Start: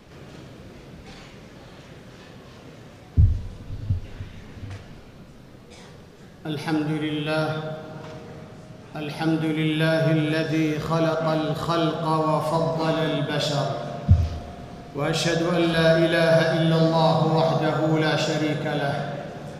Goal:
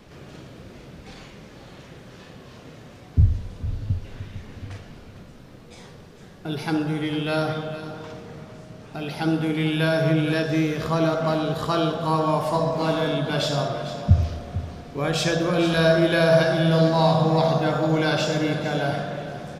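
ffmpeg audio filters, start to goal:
-af "aecho=1:1:452:0.224"

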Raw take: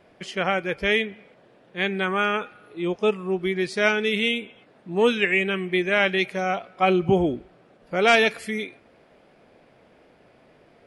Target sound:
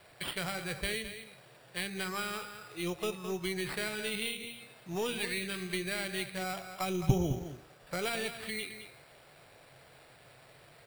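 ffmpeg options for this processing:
-filter_complex "[0:a]tiltshelf=f=690:g=-7,bandreject=f=78.58:t=h:w=4,bandreject=f=157.16:t=h:w=4,bandreject=f=235.74:t=h:w=4,bandreject=f=314.32:t=h:w=4,bandreject=f=392.9:t=h:w=4,bandreject=f=471.48:t=h:w=4,bandreject=f=550.06:t=h:w=4,bandreject=f=628.64:t=h:w=4,bandreject=f=707.22:t=h:w=4,bandreject=f=785.8:t=h:w=4,bandreject=f=864.38:t=h:w=4,bandreject=f=942.96:t=h:w=4,bandreject=f=1021.54:t=h:w=4,bandreject=f=1100.12:t=h:w=4,bandreject=f=1178.7:t=h:w=4,bandreject=f=1257.28:t=h:w=4,bandreject=f=1335.86:t=h:w=4,bandreject=f=1414.44:t=h:w=4,bandreject=f=1493.02:t=h:w=4,bandreject=f=1571.6:t=h:w=4,bandreject=f=1650.18:t=h:w=4,bandreject=f=1728.76:t=h:w=4,bandreject=f=1807.34:t=h:w=4,bandreject=f=1885.92:t=h:w=4,bandreject=f=1964.5:t=h:w=4,bandreject=f=2043.08:t=h:w=4,bandreject=f=2121.66:t=h:w=4,bandreject=f=2200.24:t=h:w=4,bandreject=f=2278.82:t=h:w=4,bandreject=f=2357.4:t=h:w=4,bandreject=f=2435.98:t=h:w=4,bandreject=f=2514.56:t=h:w=4,bandreject=f=2593.14:t=h:w=4,bandreject=f=2671.72:t=h:w=4,bandreject=f=2750.3:t=h:w=4,bandreject=f=2828.88:t=h:w=4,bandreject=f=2907.46:t=h:w=4,bandreject=f=2986.04:t=h:w=4,acrossover=split=300[s0][s1];[s1]acompressor=threshold=0.02:ratio=5[s2];[s0][s2]amix=inputs=2:normalize=0,lowshelf=f=170:t=q:w=3:g=6.5,acrusher=samples=7:mix=1:aa=0.000001,aeval=exprs='0.224*(cos(1*acos(clip(val(0)/0.224,-1,1)))-cos(1*PI/2))+0.0562*(cos(2*acos(clip(val(0)/0.224,-1,1)))-cos(2*PI/2))':c=same,asplit=2[s3][s4];[s4]aecho=0:1:214:0.282[s5];[s3][s5]amix=inputs=2:normalize=0,volume=0.794"

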